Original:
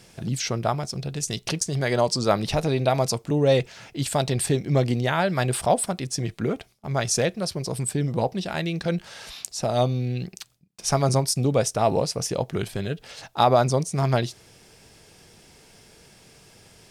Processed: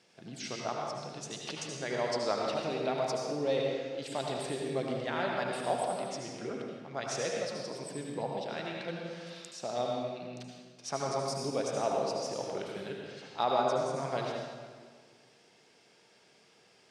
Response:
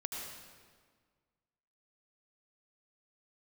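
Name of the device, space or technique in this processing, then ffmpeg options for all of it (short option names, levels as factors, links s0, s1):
supermarket ceiling speaker: -filter_complex "[0:a]highpass=260,lowpass=5700[s0];[1:a]atrim=start_sample=2205[s1];[s0][s1]afir=irnorm=-1:irlink=0,volume=0.355"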